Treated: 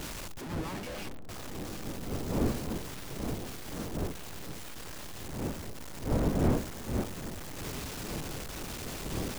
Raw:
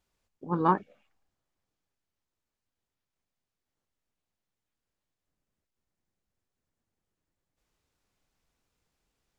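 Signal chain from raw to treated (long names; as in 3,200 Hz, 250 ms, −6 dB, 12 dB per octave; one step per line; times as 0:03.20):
sign of each sample alone
wind on the microphone 330 Hz −36 dBFS
one half of a high-frequency compander decoder only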